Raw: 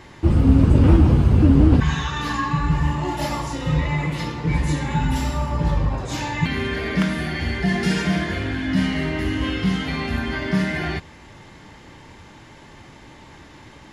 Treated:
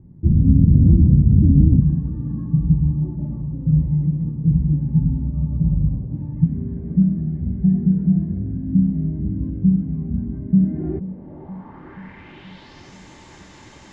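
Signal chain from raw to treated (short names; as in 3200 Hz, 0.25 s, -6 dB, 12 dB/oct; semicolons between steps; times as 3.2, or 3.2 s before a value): low-pass sweep 180 Hz -> 7100 Hz, 10.5–12.99; on a send: tape echo 0.478 s, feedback 74%, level -14 dB; on the sum: gain -1 dB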